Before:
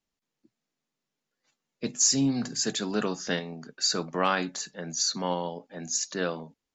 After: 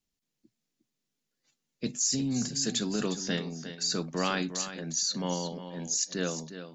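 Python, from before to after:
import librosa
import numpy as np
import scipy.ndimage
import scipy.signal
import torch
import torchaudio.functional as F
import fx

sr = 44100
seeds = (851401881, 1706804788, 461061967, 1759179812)

p1 = fx.peak_eq(x, sr, hz=960.0, db=-10.0, octaves=2.7)
p2 = fx.over_compress(p1, sr, threshold_db=-31.0, ratio=-0.5)
p3 = p1 + F.gain(torch.from_numpy(p2), 2.5).numpy()
p4 = p3 + 10.0 ** (-11.0 / 20.0) * np.pad(p3, (int(357 * sr / 1000.0), 0))[:len(p3)]
y = F.gain(torch.from_numpy(p4), -5.5).numpy()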